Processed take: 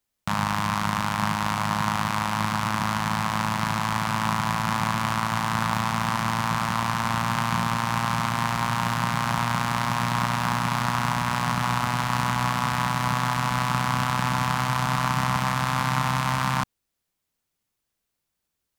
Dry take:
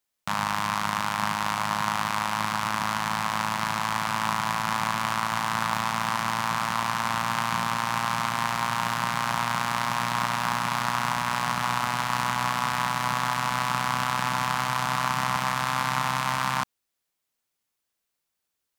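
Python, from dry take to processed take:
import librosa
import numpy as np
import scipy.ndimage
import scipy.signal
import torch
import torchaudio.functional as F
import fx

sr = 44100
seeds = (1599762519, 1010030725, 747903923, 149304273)

y = fx.low_shelf(x, sr, hz=260.0, db=11.0)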